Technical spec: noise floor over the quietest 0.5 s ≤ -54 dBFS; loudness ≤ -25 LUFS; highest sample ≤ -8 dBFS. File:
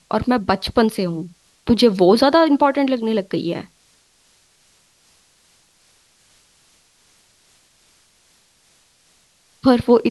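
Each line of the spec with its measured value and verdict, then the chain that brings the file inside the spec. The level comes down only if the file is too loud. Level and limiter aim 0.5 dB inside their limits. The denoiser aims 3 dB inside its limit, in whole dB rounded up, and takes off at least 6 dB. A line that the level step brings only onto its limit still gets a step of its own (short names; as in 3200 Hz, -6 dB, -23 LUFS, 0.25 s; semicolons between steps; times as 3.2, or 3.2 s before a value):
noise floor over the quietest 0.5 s -58 dBFS: OK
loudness -17.5 LUFS: fail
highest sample -3.0 dBFS: fail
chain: gain -8 dB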